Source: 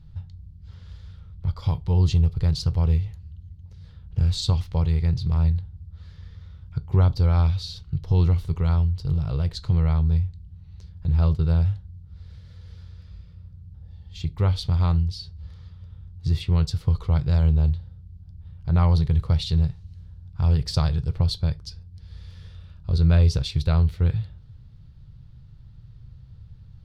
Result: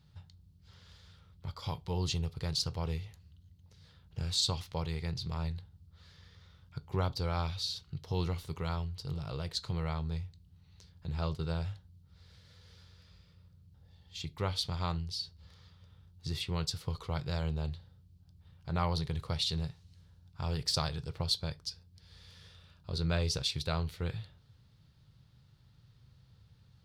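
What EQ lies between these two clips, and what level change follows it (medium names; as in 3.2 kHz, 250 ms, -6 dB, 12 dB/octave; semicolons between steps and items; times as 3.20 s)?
high-pass 380 Hz 6 dB/octave; treble shelf 4 kHz +6.5 dB; -3.5 dB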